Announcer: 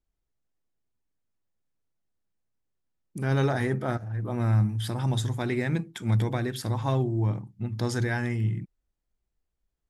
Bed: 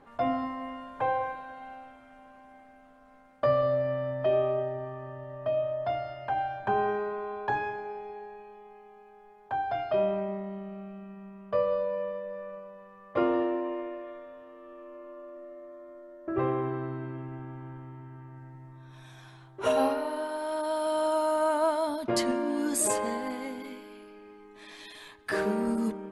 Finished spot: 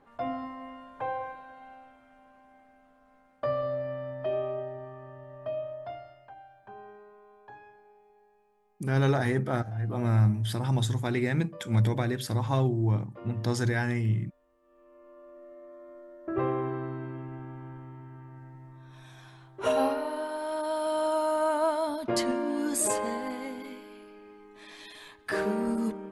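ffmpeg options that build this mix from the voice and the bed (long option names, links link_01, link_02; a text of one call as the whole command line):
ffmpeg -i stem1.wav -i stem2.wav -filter_complex "[0:a]adelay=5650,volume=0dB[link_01];[1:a]volume=14.5dB,afade=type=out:start_time=5.5:duration=0.85:silence=0.177828,afade=type=in:start_time=14.61:duration=1.34:silence=0.105925[link_02];[link_01][link_02]amix=inputs=2:normalize=0" out.wav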